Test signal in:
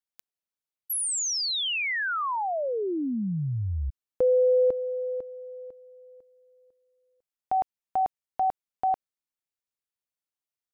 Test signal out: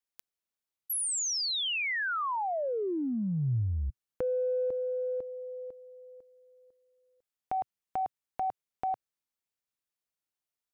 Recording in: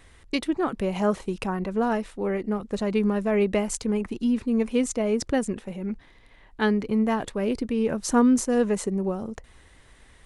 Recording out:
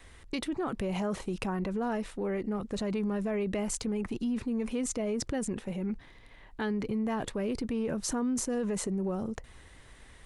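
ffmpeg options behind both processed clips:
ffmpeg -i in.wav -af "acompressor=threshold=-29dB:ratio=6:attack=2.1:release=36:knee=6:detection=peak,adynamicequalizer=threshold=0.00251:dfrequency=120:dqfactor=2.1:tfrequency=120:tqfactor=2.1:attack=5:release=100:ratio=0.375:range=2:mode=boostabove:tftype=bell" out.wav

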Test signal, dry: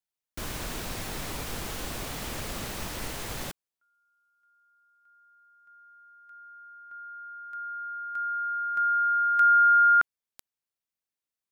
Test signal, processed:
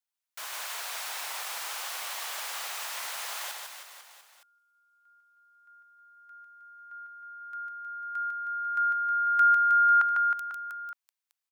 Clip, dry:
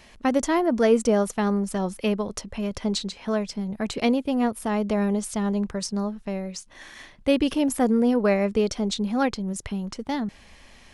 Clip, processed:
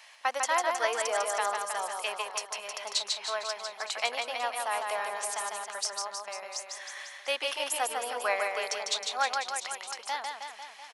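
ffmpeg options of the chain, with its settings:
ffmpeg -i in.wav -af "highpass=frequency=760:width=0.5412,highpass=frequency=760:width=1.3066,aecho=1:1:150|315|496.5|696.2|915.8:0.631|0.398|0.251|0.158|0.1" out.wav

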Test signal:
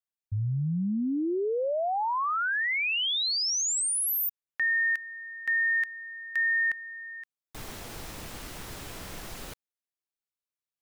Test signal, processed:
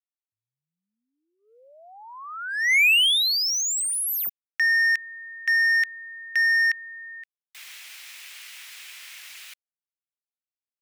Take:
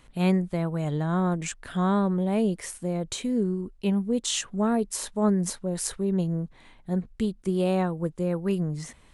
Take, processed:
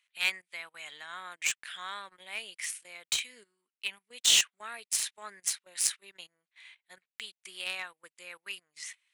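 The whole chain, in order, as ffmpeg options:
ffmpeg -i in.wav -filter_complex "[0:a]highpass=frequency=2300:width_type=q:width=2.1,agate=range=-16dB:threshold=-59dB:ratio=16:release=39:detection=peak,asplit=2[link_01][link_02];[link_02]acrusher=bits=3:mix=0:aa=0.5,volume=-5dB[link_03];[link_01][link_03]amix=inputs=2:normalize=0" out.wav

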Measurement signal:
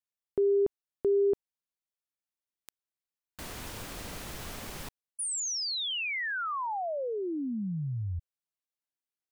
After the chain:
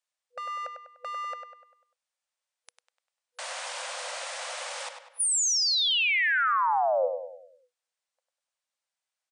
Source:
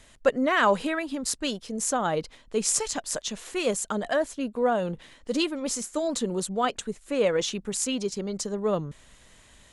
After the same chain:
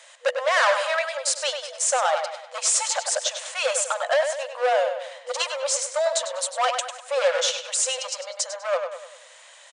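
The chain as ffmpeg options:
ffmpeg -i in.wav -filter_complex "[0:a]asoftclip=type=hard:threshold=-24.5dB,asplit=2[link_01][link_02];[link_02]adelay=99,lowpass=frequency=4100:poles=1,volume=-6.5dB,asplit=2[link_03][link_04];[link_04]adelay=99,lowpass=frequency=4100:poles=1,volume=0.47,asplit=2[link_05][link_06];[link_06]adelay=99,lowpass=frequency=4100:poles=1,volume=0.47,asplit=2[link_07][link_08];[link_08]adelay=99,lowpass=frequency=4100:poles=1,volume=0.47,asplit=2[link_09][link_10];[link_10]adelay=99,lowpass=frequency=4100:poles=1,volume=0.47,asplit=2[link_11][link_12];[link_12]adelay=99,lowpass=frequency=4100:poles=1,volume=0.47[link_13];[link_01][link_03][link_05][link_07][link_09][link_11][link_13]amix=inputs=7:normalize=0,afftfilt=real='re*between(b*sr/4096,490,9800)':imag='im*between(b*sr/4096,490,9800)':win_size=4096:overlap=0.75,volume=7.5dB" out.wav

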